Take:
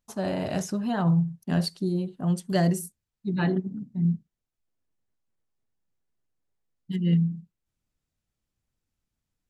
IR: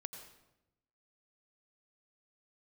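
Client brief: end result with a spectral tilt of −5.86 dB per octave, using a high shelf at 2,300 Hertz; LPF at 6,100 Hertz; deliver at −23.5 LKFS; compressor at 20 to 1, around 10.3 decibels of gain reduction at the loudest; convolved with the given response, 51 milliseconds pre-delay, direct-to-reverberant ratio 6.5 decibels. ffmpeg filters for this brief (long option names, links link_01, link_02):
-filter_complex "[0:a]lowpass=6100,highshelf=frequency=2300:gain=8.5,acompressor=threshold=-28dB:ratio=20,asplit=2[link_01][link_02];[1:a]atrim=start_sample=2205,adelay=51[link_03];[link_02][link_03]afir=irnorm=-1:irlink=0,volume=-3.5dB[link_04];[link_01][link_04]amix=inputs=2:normalize=0,volume=10dB"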